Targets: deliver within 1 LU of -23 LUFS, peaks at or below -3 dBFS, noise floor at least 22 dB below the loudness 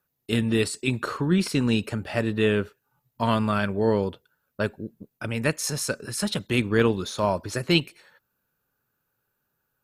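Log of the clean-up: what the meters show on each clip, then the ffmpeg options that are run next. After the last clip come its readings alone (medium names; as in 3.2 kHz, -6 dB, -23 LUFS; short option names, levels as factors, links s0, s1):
loudness -25.5 LUFS; peak level -6.5 dBFS; loudness target -23.0 LUFS
-> -af "volume=1.33"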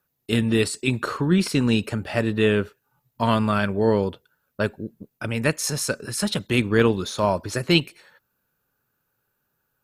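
loudness -23.0 LUFS; peak level -4.0 dBFS; noise floor -75 dBFS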